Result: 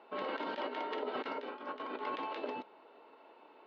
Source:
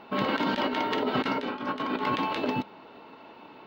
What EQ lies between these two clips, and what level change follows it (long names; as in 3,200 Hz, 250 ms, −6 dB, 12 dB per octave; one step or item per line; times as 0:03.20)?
resonant band-pass 430 Hz, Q 1.4
high-frequency loss of the air 120 metres
first difference
+16.5 dB